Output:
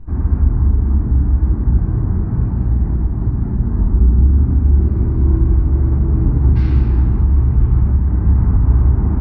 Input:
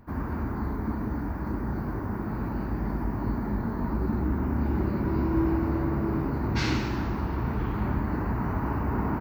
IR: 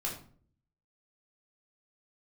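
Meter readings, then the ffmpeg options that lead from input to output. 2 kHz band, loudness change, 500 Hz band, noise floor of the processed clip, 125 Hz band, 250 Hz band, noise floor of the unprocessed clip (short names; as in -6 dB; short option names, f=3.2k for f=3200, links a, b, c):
n/a, +13.5 dB, +1.5 dB, -20 dBFS, +16.5 dB, +5.0 dB, -32 dBFS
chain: -filter_complex "[0:a]lowpass=f=5.8k:w=0.5412,lowpass=f=5.8k:w=1.3066,aemphasis=mode=reproduction:type=riaa,alimiter=limit=-9dB:level=0:latency=1:release=276,asplit=2[a][b];[1:a]atrim=start_sample=2205,lowshelf=f=200:g=9[c];[b][c]afir=irnorm=-1:irlink=0,volume=-3.5dB[d];[a][d]amix=inputs=2:normalize=0,volume=-6.5dB"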